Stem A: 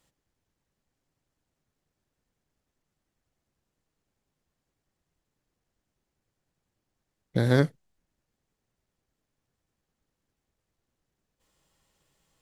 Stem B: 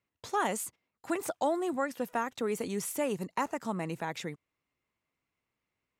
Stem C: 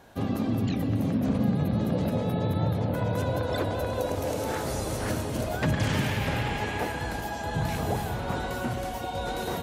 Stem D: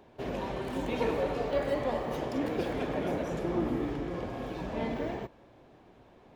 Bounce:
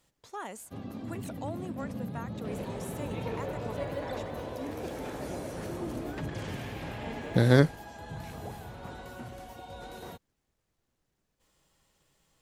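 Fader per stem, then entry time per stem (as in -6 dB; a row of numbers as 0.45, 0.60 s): +1.5, -10.0, -12.5, -7.0 dB; 0.00, 0.00, 0.55, 2.25 s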